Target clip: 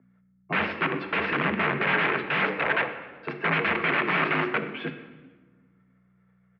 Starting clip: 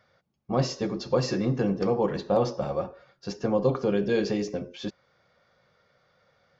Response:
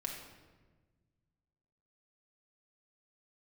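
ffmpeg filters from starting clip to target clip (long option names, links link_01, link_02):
-filter_complex "[0:a]agate=range=-33dB:threshold=-53dB:ratio=3:detection=peak,acrossover=split=270[link_01][link_02];[link_02]aeval=exprs='(mod(22.4*val(0)+1,2)-1)/22.4':channel_layout=same[link_03];[link_01][link_03]amix=inputs=2:normalize=0,tiltshelf=frequency=1100:gain=-7.5,aeval=exprs='val(0)+0.00178*(sin(2*PI*60*n/s)+sin(2*PI*2*60*n/s)/2+sin(2*PI*3*60*n/s)/3+sin(2*PI*4*60*n/s)/4+sin(2*PI*5*60*n/s)/5)':channel_layout=same,bandreject=frequency=50:width_type=h:width=6,bandreject=frequency=100:width_type=h:width=6,bandreject=frequency=150:width_type=h:width=6,bandreject=frequency=200:width_type=h:width=6,bandreject=frequency=250:width_type=h:width=6,bandreject=frequency=300:width_type=h:width=6,asplit=5[link_04][link_05][link_06][link_07][link_08];[link_05]adelay=123,afreqshift=-34,volume=-19.5dB[link_09];[link_06]adelay=246,afreqshift=-68,volume=-25.2dB[link_10];[link_07]adelay=369,afreqshift=-102,volume=-30.9dB[link_11];[link_08]adelay=492,afreqshift=-136,volume=-36.5dB[link_12];[link_04][link_09][link_10][link_11][link_12]amix=inputs=5:normalize=0,asplit=2[link_13][link_14];[1:a]atrim=start_sample=2205[link_15];[link_14][link_15]afir=irnorm=-1:irlink=0,volume=-1.5dB[link_16];[link_13][link_16]amix=inputs=2:normalize=0,highpass=frequency=240:width_type=q:width=0.5412,highpass=frequency=240:width_type=q:width=1.307,lowpass=frequency=2500:width_type=q:width=0.5176,lowpass=frequency=2500:width_type=q:width=0.7071,lowpass=frequency=2500:width_type=q:width=1.932,afreqshift=-52,volume=5dB"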